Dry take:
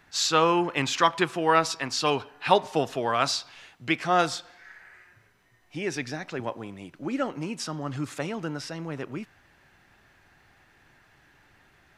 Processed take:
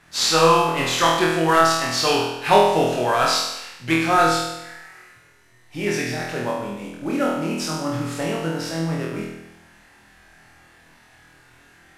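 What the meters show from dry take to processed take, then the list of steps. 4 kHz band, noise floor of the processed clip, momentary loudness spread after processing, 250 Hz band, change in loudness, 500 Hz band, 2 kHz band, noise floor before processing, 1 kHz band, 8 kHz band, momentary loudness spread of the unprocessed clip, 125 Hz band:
+6.5 dB, -53 dBFS, 14 LU, +6.5 dB, +6.5 dB, +7.0 dB, +6.5 dB, -61 dBFS, +6.5 dB, +7.0 dB, 15 LU, +7.5 dB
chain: CVSD coder 64 kbps; flutter echo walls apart 4.2 m, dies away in 0.91 s; trim +2.5 dB

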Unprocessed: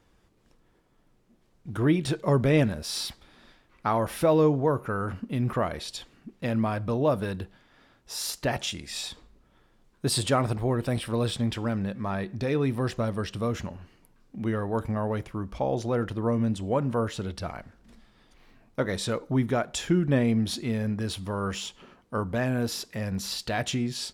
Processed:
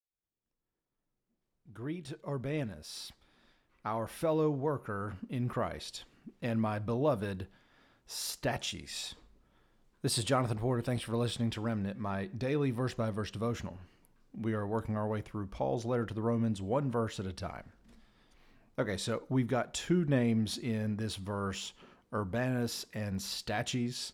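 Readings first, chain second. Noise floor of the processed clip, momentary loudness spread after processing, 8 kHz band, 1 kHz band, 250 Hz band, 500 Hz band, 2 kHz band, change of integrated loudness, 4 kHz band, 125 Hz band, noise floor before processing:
-85 dBFS, 12 LU, -6.0 dB, -6.5 dB, -6.5 dB, -7.0 dB, -6.5 dB, -6.5 dB, -6.0 dB, -6.5 dB, -64 dBFS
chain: fade-in on the opening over 6.48 s; trim -5.5 dB

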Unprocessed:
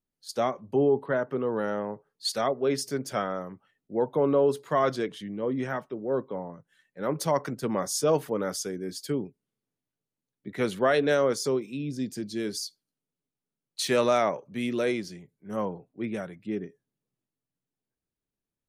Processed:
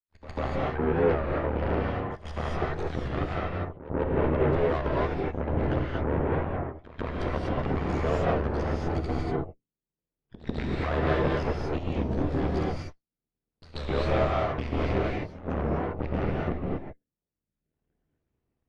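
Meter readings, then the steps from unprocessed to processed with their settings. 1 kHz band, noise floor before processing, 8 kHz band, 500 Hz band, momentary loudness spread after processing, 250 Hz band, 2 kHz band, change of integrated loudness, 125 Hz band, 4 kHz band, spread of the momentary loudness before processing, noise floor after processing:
+0.5 dB, under -85 dBFS, under -20 dB, -2.0 dB, 9 LU, +0.5 dB, 0.0 dB, -0.5 dB, +9.0 dB, -7.5 dB, 12 LU, under -85 dBFS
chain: random holes in the spectrogram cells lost 32%; recorder AGC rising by 21 dB/s; hum notches 50/100/150/200/250 Hz; dynamic bell 3.4 kHz, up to +5 dB, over -45 dBFS, Q 0.88; in parallel at -1 dB: peak limiter -21.5 dBFS, peak gain reduction 13.5 dB; on the sum: ring modulator 38 Hz; saturation -18.5 dBFS, distortion -15 dB; Chebyshev shaper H 3 -9 dB, 4 -10 dB, 6 -27 dB, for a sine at -18.5 dBFS; tape spacing loss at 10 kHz 38 dB; pre-echo 143 ms -15 dB; gated-style reverb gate 270 ms rising, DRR -4 dB; warped record 33 1/3 rpm, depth 160 cents

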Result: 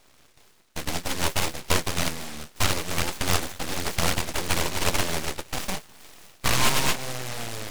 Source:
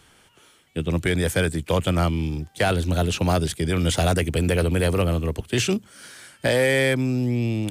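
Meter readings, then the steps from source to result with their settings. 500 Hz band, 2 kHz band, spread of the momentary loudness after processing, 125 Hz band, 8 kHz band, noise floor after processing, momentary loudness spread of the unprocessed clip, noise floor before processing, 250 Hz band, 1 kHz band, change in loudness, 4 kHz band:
-10.0 dB, -2.5 dB, 10 LU, -10.0 dB, +4.5 dB, -57 dBFS, 7 LU, -56 dBFS, -10.5 dB, 0.0 dB, -4.0 dB, +2.0 dB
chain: flange 1.8 Hz, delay 9.4 ms, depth 4.7 ms, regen +39%; hum notches 60/120 Hz; in parallel at -1 dB: compression, threshold -37 dBFS, peak gain reduction 17 dB; on the sum: high-order bell 660 Hz +11.5 dB; on a send: thinning echo 204 ms, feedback 83%, high-pass 1.1 kHz, level -16.5 dB; on the sum: ring modulator 1.4 kHz; full-wave rectifier; delay time shaken by noise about 1.4 kHz, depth 0.18 ms; trim -4 dB

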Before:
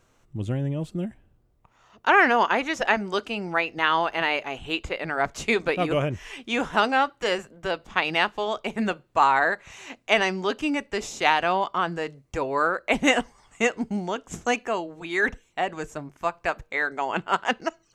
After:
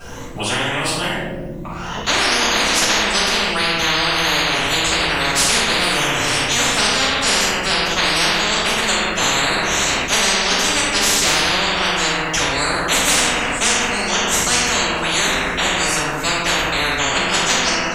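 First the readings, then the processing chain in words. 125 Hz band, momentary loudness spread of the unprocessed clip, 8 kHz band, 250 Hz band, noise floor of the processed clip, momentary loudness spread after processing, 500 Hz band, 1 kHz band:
+6.0 dB, 10 LU, +24.0 dB, +4.0 dB, -27 dBFS, 5 LU, +3.5 dB, +4.0 dB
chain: drifting ripple filter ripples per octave 1.1, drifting +2.2 Hz, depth 8 dB; simulated room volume 260 m³, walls mixed, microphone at 6.4 m; spectrum-flattening compressor 10:1; trim -10.5 dB

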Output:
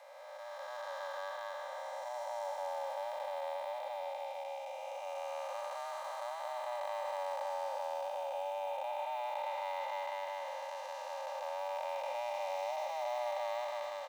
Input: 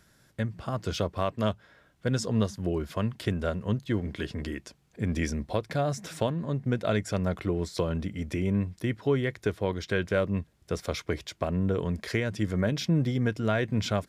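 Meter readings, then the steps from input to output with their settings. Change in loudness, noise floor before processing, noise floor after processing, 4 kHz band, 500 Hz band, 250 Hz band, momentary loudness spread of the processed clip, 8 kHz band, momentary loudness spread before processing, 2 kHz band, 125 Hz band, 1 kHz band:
-10.0 dB, -65 dBFS, -45 dBFS, -10.5 dB, -7.5 dB, under -40 dB, 5 LU, -12.0 dB, 7 LU, -10.5 dB, under -40 dB, +1.5 dB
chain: spectral blur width 942 ms; short-mantissa float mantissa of 4-bit; comb 2.6 ms, depth 80%; frequency shift +480 Hz; speakerphone echo 400 ms, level -18 dB; trim -7 dB

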